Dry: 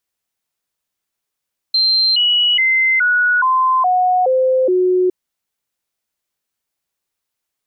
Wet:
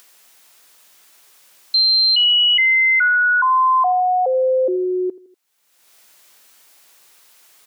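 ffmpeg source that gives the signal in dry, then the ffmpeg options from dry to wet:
-f lavfi -i "aevalsrc='0.282*clip(min(mod(t,0.42),0.42-mod(t,0.42))/0.005,0,1)*sin(2*PI*4140*pow(2,-floor(t/0.42)/2)*mod(t,0.42))':d=3.36:s=44100"
-filter_complex "[0:a]highpass=f=570:p=1,asplit=2[s0][s1];[s1]adelay=81,lowpass=f=2000:p=1,volume=0.126,asplit=2[s2][s3];[s3]adelay=81,lowpass=f=2000:p=1,volume=0.41,asplit=2[s4][s5];[s5]adelay=81,lowpass=f=2000:p=1,volume=0.41[s6];[s0][s2][s4][s6]amix=inputs=4:normalize=0,acompressor=mode=upward:threshold=0.0398:ratio=2.5"

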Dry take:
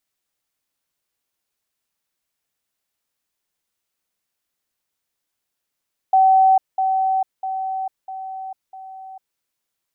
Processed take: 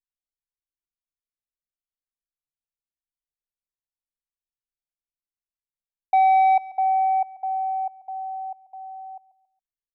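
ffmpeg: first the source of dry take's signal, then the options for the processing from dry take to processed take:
-f lavfi -i "aevalsrc='pow(10,(-10-6*floor(t/0.65))/20)*sin(2*PI*763*t)*clip(min(mod(t,0.65),0.45-mod(t,0.65))/0.005,0,1)':d=3.25:s=44100"
-af "anlmdn=1,asoftclip=type=tanh:threshold=0.237,aecho=1:1:138|276|414:0.112|0.0404|0.0145"

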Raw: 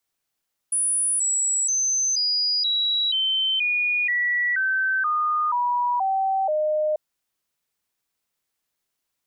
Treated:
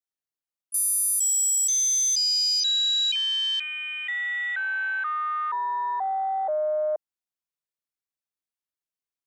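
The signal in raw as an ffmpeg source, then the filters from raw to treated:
-f lavfi -i "aevalsrc='0.106*clip(min(mod(t,0.48),0.48-mod(t,0.48))/0.005,0,1)*sin(2*PI*9800*pow(2,-floor(t/0.48)/3)*mod(t,0.48))':d=6.24:s=44100"
-filter_complex "[0:a]acrossover=split=470|3000[s0][s1][s2];[s1]acompressor=threshold=0.0447:ratio=6[s3];[s0][s3][s2]amix=inputs=3:normalize=0,adynamicequalizer=threshold=0.0112:dfrequency=2500:dqfactor=2.9:tfrequency=2500:tqfactor=2.9:attack=5:release=100:ratio=0.375:range=3.5:mode=cutabove:tftype=bell,afwtdn=0.0316"

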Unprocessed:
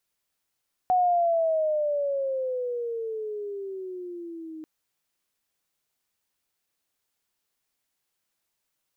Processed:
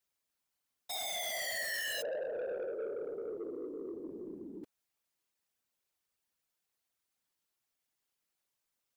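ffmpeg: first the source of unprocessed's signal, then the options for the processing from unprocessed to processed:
-f lavfi -i "aevalsrc='pow(10,(-18-18.5*t/3.74)/20)*sin(2*PI*740*3.74/(-15*log(2)/12)*(exp(-15*log(2)/12*t/3.74)-1))':d=3.74:s=44100"
-af "aeval=exprs='(mod(15*val(0)+1,2)-1)/15':c=same,afftfilt=real='hypot(re,im)*cos(2*PI*random(0))':imag='hypot(re,im)*sin(2*PI*random(1))':win_size=512:overlap=0.75,asoftclip=type=tanh:threshold=0.0211"

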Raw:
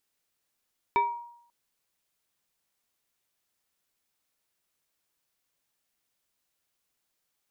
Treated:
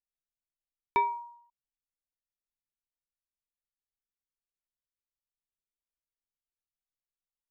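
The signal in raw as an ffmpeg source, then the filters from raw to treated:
-f lavfi -i "aevalsrc='0.126*pow(10,-3*t/0.69)*sin(2*PI*948*t+0.68*pow(10,-3*t/0.51)*sin(2*PI*1.43*948*t))':d=0.54:s=44100"
-af "anlmdn=0.0000158"

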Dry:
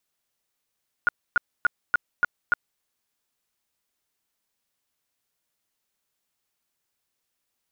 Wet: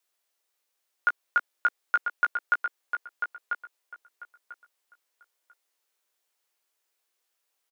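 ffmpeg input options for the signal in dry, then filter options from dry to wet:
-f lavfi -i "aevalsrc='0.178*sin(2*PI*1430*mod(t,0.29))*lt(mod(t,0.29),24/1430)':d=1.74:s=44100"
-filter_complex "[0:a]highpass=f=350:w=0.5412,highpass=f=350:w=1.3066,asplit=2[s0][s1];[s1]adelay=17,volume=0.422[s2];[s0][s2]amix=inputs=2:normalize=0,asplit=2[s3][s4];[s4]adelay=993,lowpass=f=3700:p=1,volume=0.501,asplit=2[s5][s6];[s6]adelay=993,lowpass=f=3700:p=1,volume=0.2,asplit=2[s7][s8];[s8]adelay=993,lowpass=f=3700:p=1,volume=0.2[s9];[s3][s5][s7][s9]amix=inputs=4:normalize=0"

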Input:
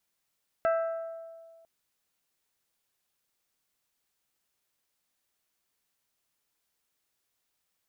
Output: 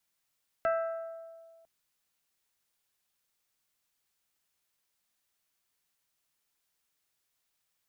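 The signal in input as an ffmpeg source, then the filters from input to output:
-f lavfi -i "aevalsrc='0.0794*pow(10,-3*t/1.8)*sin(2*PI*660*t)+0.0355*pow(10,-3*t/1.108)*sin(2*PI*1320*t)+0.0158*pow(10,-3*t/0.975)*sin(2*PI*1584*t)+0.00708*pow(10,-3*t/0.834)*sin(2*PI*1980*t)+0.00316*pow(10,-3*t/0.682)*sin(2*PI*2640*t)':d=1:s=44100"
-filter_complex "[0:a]lowshelf=f=500:g=-7.5,bandreject=f=60:t=h:w=6,bandreject=f=120:t=h:w=6,bandreject=f=180:t=h:w=6,bandreject=f=240:t=h:w=6,acrossover=split=220|1000[s0][s1][s2];[s0]acontrast=71[s3];[s3][s1][s2]amix=inputs=3:normalize=0"

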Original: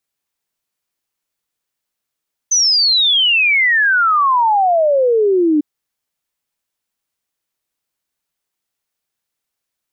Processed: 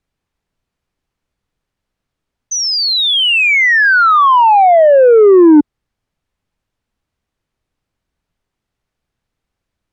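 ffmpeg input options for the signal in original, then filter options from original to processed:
-f lavfi -i "aevalsrc='0.316*clip(min(t,3.1-t)/0.01,0,1)*sin(2*PI*6200*3.1/log(290/6200)*(exp(log(290/6200)*t/3.1)-1))':d=3.1:s=44100"
-af "aemphasis=mode=reproduction:type=riaa,acontrast=61"

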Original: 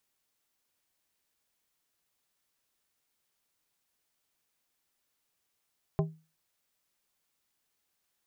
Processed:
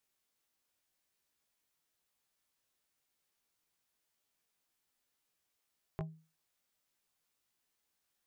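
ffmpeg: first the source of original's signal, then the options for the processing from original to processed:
-f lavfi -i "aevalsrc='0.0794*pow(10,-3*t/0.32)*sin(2*PI*159*t)+0.0501*pow(10,-3*t/0.168)*sin(2*PI*397.5*t)+0.0316*pow(10,-3*t/0.121)*sin(2*PI*636*t)+0.02*pow(10,-3*t/0.104)*sin(2*PI*795*t)+0.0126*pow(10,-3*t/0.086)*sin(2*PI*1033.5*t)':d=0.89:s=44100"
-af "acompressor=threshold=0.0141:ratio=3,flanger=delay=16.5:depth=2.3:speed=0.92"

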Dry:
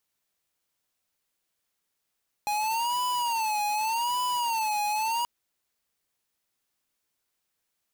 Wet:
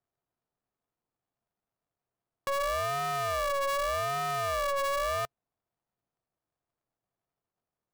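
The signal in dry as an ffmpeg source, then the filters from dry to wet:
-f lavfi -i "aevalsrc='0.0422*(2*lt(mod((913*t-81/(2*PI*0.85)*sin(2*PI*0.85*t)),1),0.5)-1)':d=2.78:s=44100"
-af "lowpass=f=1000:w=0.5412,lowpass=f=1000:w=1.3066,equalizer=f=410:w=6.4:g=9.5,aeval=exprs='val(0)*sgn(sin(2*PI*280*n/s))':c=same"

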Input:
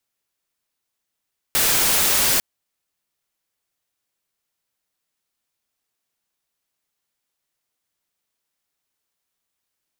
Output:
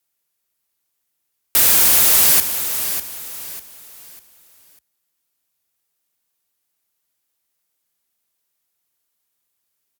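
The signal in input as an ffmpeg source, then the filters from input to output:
-f lavfi -i "anoisesrc=c=white:a=0.218:d=0.85:r=44100:seed=1"
-af "equalizer=f=15000:t=o:w=1.1:g=9,afreqshift=44,aecho=1:1:597|1194|1791|2388:0.335|0.111|0.0365|0.012"

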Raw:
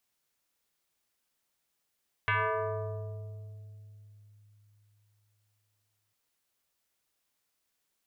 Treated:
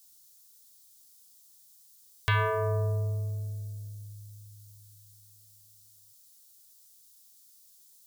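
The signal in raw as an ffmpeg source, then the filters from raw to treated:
-f lavfi -i "aevalsrc='0.0631*pow(10,-3*t/3.96)*sin(2*PI*104*t+4.3*pow(10,-3*t/2.84)*sin(2*PI*5.22*104*t))':d=3.85:s=44100"
-af "lowshelf=f=300:g=11.5,aexciter=amount=10.4:drive=3.3:freq=3600"

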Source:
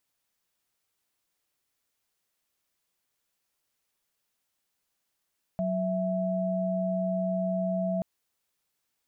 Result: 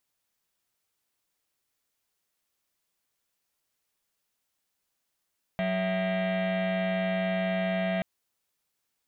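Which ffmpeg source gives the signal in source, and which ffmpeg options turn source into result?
-f lavfi -i "aevalsrc='0.0376*(sin(2*PI*185*t)+sin(2*PI*659.26*t))':d=2.43:s=44100"
-af "aeval=exprs='0.0794*(cos(1*acos(clip(val(0)/0.0794,-1,1)))-cos(1*PI/2))+0.0224*(cos(7*acos(clip(val(0)/0.0794,-1,1)))-cos(7*PI/2))':c=same"

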